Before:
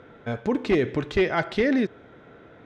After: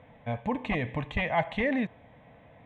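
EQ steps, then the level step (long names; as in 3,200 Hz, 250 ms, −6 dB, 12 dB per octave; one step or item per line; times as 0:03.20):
high-shelf EQ 5,500 Hz −11 dB
dynamic equaliser 1,100 Hz, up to +3 dB, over −37 dBFS, Q 0.97
phaser with its sweep stopped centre 1,400 Hz, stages 6
0.0 dB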